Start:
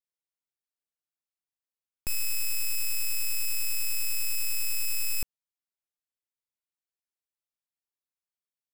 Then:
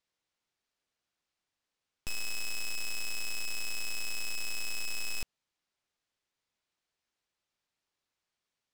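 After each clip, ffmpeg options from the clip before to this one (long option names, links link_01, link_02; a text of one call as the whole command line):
ffmpeg -i in.wav -filter_complex "[0:a]lowpass=5800,asplit=2[link_01][link_02];[link_02]aeval=exprs='0.0596*sin(PI/2*3.16*val(0)/0.0596)':channel_layout=same,volume=-5dB[link_03];[link_01][link_03]amix=inputs=2:normalize=0" out.wav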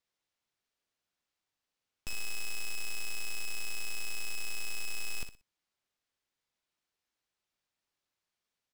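ffmpeg -i in.wav -af "aecho=1:1:61|122|183:0.335|0.0837|0.0209,volume=-2dB" out.wav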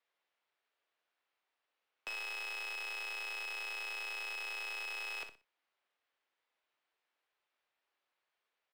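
ffmpeg -i in.wav -filter_complex "[0:a]acrossover=split=340|500|4400[link_01][link_02][link_03][link_04];[link_01]alimiter=level_in=18dB:limit=-24dB:level=0:latency=1,volume=-18dB[link_05];[link_05][link_02][link_03][link_04]amix=inputs=4:normalize=0,acrossover=split=370 3500:gain=0.0891 1 0.1[link_06][link_07][link_08];[link_06][link_07][link_08]amix=inputs=3:normalize=0,asplit=2[link_09][link_10];[link_10]adelay=29,volume=-13dB[link_11];[link_09][link_11]amix=inputs=2:normalize=0,volume=5.5dB" out.wav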